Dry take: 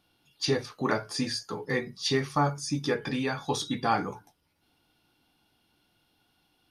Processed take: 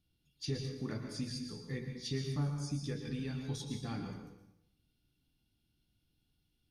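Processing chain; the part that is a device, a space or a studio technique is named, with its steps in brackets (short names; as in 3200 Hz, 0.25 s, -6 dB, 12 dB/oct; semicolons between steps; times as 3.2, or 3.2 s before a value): passive tone stack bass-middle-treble 10-0-1; bathroom (reverb RT60 0.85 s, pre-delay 0.108 s, DRR 4.5 dB); gain +8.5 dB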